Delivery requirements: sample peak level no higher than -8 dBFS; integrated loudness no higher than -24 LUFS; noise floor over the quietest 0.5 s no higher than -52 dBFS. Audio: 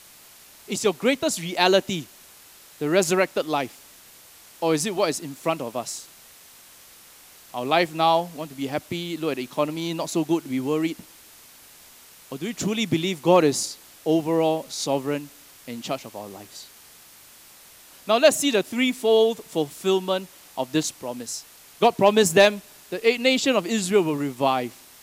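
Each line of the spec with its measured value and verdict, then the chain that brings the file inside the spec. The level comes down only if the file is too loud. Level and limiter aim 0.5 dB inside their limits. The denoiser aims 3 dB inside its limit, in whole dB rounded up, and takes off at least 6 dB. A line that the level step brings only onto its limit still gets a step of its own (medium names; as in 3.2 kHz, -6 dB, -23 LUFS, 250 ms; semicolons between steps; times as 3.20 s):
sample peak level -5.0 dBFS: fail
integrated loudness -23.0 LUFS: fail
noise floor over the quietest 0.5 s -49 dBFS: fail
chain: noise reduction 6 dB, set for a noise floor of -49 dBFS; trim -1.5 dB; peak limiter -8.5 dBFS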